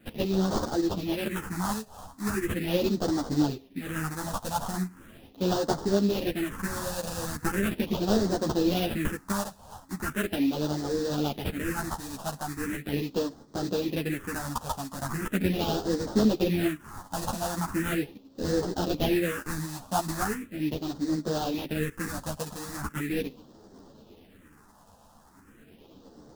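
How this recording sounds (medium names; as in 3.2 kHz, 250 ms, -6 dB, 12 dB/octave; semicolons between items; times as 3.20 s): aliases and images of a low sample rate 2.2 kHz, jitter 20%; phasing stages 4, 0.39 Hz, lowest notch 350–2500 Hz; tremolo saw up 8.7 Hz, depth 35%; a shimmering, thickened sound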